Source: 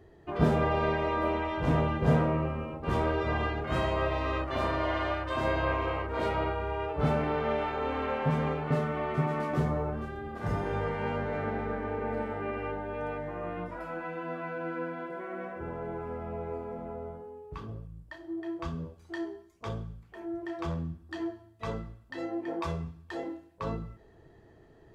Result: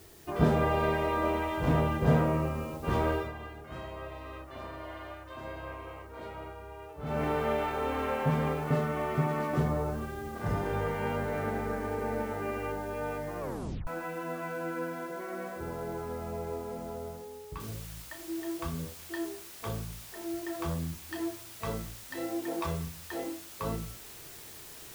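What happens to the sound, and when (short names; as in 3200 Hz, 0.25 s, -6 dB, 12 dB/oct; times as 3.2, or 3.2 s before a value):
3.13–7.24 dip -12.5 dB, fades 0.19 s
13.4 tape stop 0.47 s
17.6 noise floor step -57 dB -48 dB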